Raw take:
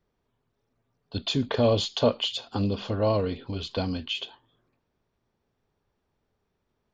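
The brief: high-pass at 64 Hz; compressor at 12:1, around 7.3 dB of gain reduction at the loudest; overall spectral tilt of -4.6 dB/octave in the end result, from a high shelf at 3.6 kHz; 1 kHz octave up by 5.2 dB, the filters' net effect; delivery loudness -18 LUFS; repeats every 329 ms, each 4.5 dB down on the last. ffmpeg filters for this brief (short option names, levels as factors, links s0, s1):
-af "highpass=64,equalizer=f=1000:t=o:g=6,highshelf=f=3600:g=8,acompressor=threshold=0.0794:ratio=12,aecho=1:1:329|658|987|1316|1645|1974|2303|2632|2961:0.596|0.357|0.214|0.129|0.0772|0.0463|0.0278|0.0167|0.01,volume=2.99"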